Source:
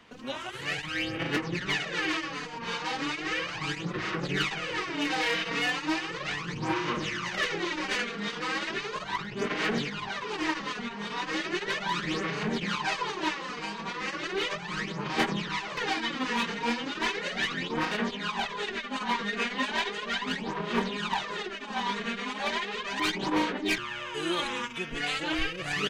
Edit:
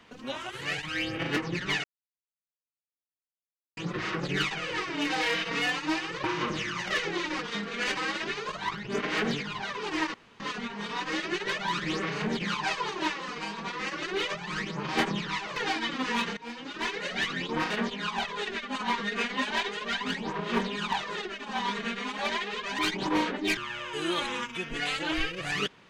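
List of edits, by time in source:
0:01.84–0:03.77: silence
0:06.24–0:06.71: remove
0:07.86–0:08.44: reverse
0:10.61: splice in room tone 0.26 s
0:16.58–0:17.53: fade in equal-power, from −20 dB

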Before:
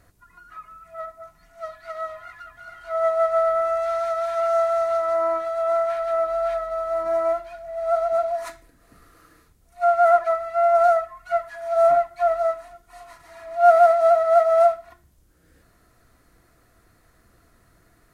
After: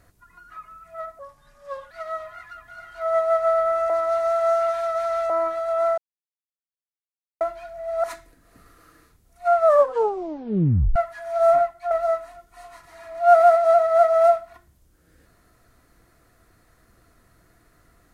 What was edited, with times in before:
0:01.19–0:01.80: play speed 85%
0:03.79–0:05.19: reverse
0:05.87–0:07.30: silence
0:07.93–0:08.40: remove
0:09.93: tape stop 1.39 s
0:11.89–0:12.27: fade out, to −7.5 dB

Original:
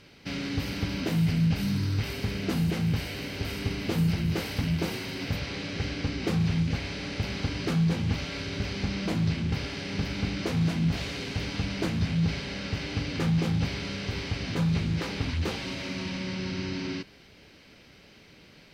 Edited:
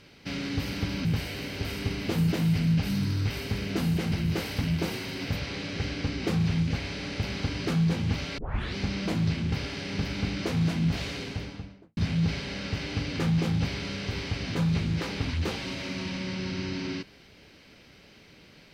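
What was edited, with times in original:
0:02.85–0:04.12: move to 0:01.05
0:08.38: tape start 0.37 s
0:11.08–0:11.97: fade out and dull

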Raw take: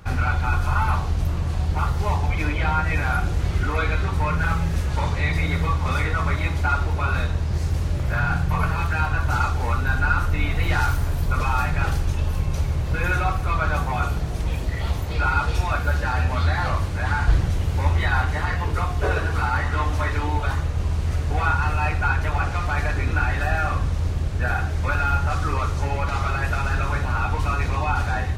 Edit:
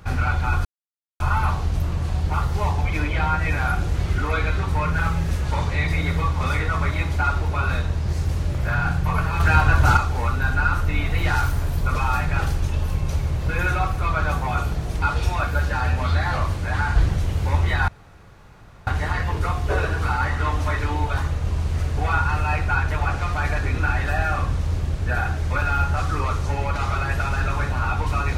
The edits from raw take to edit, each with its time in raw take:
0:00.65: splice in silence 0.55 s
0:08.85–0:09.42: clip gain +6 dB
0:14.47–0:15.34: remove
0:18.20: splice in room tone 0.99 s

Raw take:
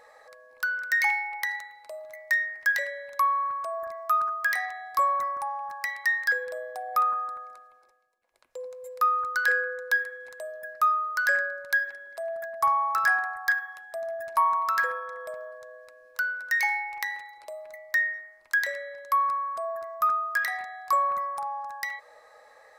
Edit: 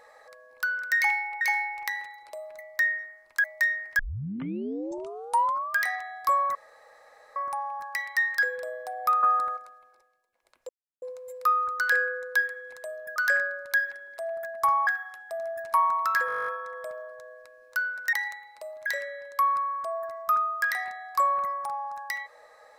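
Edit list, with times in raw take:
0:01.41–0:02.14: swap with 0:16.56–0:18.59
0:02.69: tape start 1.81 s
0:05.25: splice in room tone 0.81 s
0:07.12–0:07.46: clip gain +8.5 dB
0:08.58: splice in silence 0.33 s
0:10.72–0:11.15: remove
0:12.86–0:13.50: remove
0:14.90: stutter 0.02 s, 11 plays

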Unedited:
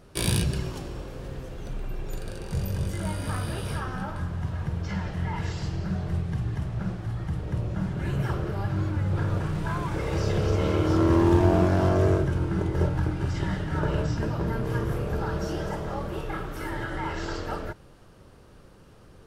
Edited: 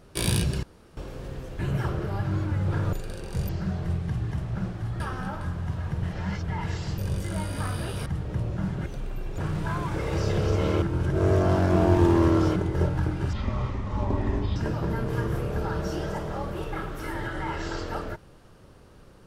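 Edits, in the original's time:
0:00.63–0:00.97: fill with room tone
0:01.59–0:02.11: swap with 0:08.04–0:09.38
0:02.67–0:03.75: swap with 0:05.73–0:07.24
0:04.78–0:05.23: reverse
0:10.82–0:12.56: reverse
0:13.33–0:14.13: play speed 65%

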